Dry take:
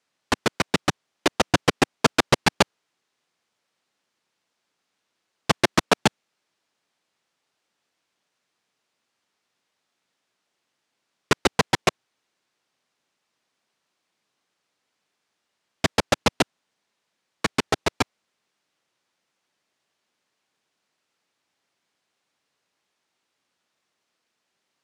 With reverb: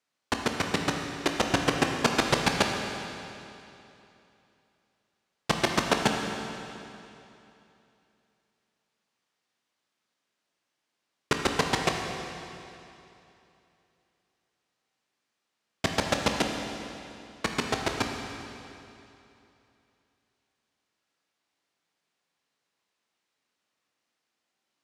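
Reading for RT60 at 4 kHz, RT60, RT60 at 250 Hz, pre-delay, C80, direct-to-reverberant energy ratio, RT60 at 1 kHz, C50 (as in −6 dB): 2.7 s, 2.9 s, 2.9 s, 18 ms, 4.0 dB, 2.0 dB, 2.9 s, 3.0 dB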